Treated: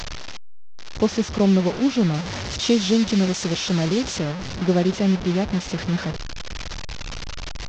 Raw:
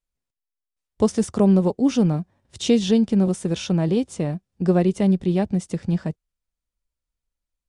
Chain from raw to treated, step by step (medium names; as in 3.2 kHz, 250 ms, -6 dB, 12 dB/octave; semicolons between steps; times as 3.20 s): one-bit delta coder 32 kbps, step -23 dBFS; 2.14–4.19 s: treble shelf 4.9 kHz +11 dB; trim -1 dB